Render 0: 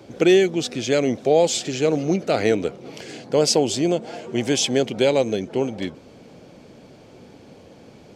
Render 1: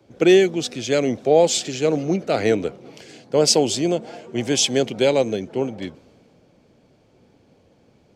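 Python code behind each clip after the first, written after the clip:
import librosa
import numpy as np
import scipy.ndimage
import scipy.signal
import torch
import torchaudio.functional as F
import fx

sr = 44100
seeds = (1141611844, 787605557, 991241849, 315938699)

y = fx.band_widen(x, sr, depth_pct=40)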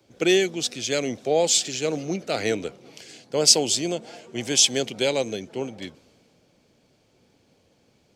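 y = fx.high_shelf(x, sr, hz=2200.0, db=11.0)
y = y * librosa.db_to_amplitude(-7.0)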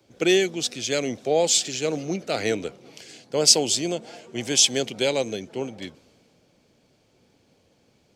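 y = x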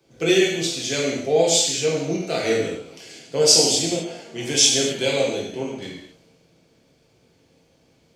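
y = fx.rev_gated(x, sr, seeds[0], gate_ms=290, shape='falling', drr_db=-4.5)
y = y * librosa.db_to_amplitude(-3.0)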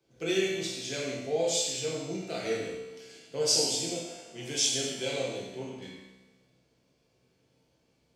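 y = fx.comb_fb(x, sr, f0_hz=64.0, decay_s=1.3, harmonics='all', damping=0.0, mix_pct=80)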